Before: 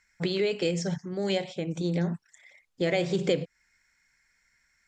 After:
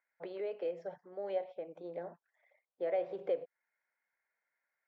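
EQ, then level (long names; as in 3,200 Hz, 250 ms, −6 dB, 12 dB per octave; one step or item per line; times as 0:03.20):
four-pole ladder band-pass 710 Hz, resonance 45%
high-frequency loss of the air 50 metres
+2.5 dB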